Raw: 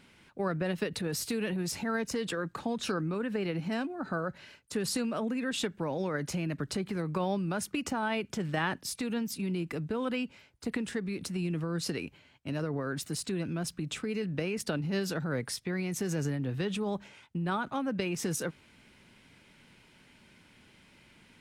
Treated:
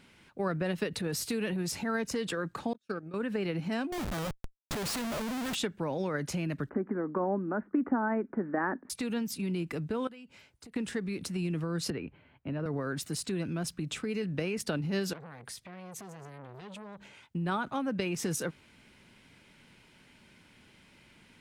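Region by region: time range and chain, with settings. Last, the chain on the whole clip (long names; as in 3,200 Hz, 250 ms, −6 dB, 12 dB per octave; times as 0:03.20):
0:02.73–0:03.14: noise gate −31 dBFS, range −42 dB + notch comb filter 1,000 Hz
0:03.92–0:05.55: high-pass filter 73 Hz + comparator with hysteresis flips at −40.5 dBFS
0:06.69–0:08.90: Butterworth low-pass 1,800 Hz 48 dB per octave + low shelf with overshoot 180 Hz −11 dB, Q 3
0:10.07–0:10.76: downward compressor 4 to 1, threshold −50 dBFS + parametric band 8,700 Hz +3.5 dB 1.1 octaves
0:11.90–0:12.66: high-frequency loss of the air 490 metres + multiband upward and downward compressor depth 40%
0:15.13–0:17.21: notch filter 5,400 Hz + downward compressor 4 to 1, threshold −39 dBFS + saturating transformer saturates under 1,100 Hz
whole clip: no processing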